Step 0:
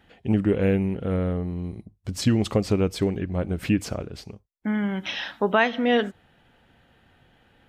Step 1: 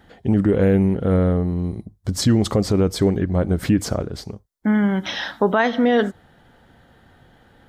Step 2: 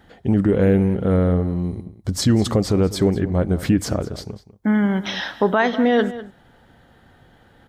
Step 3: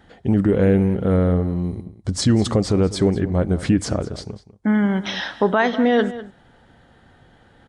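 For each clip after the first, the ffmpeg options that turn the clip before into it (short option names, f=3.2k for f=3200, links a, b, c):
-af "equalizer=f=2.6k:t=o:w=0.47:g=-11.5,alimiter=limit=-15dB:level=0:latency=1:release=32,volume=7.5dB"
-filter_complex "[0:a]asplit=2[a][b];[b]adelay=198.3,volume=-15dB,highshelf=f=4k:g=-4.46[c];[a][c]amix=inputs=2:normalize=0"
-af "aresample=22050,aresample=44100"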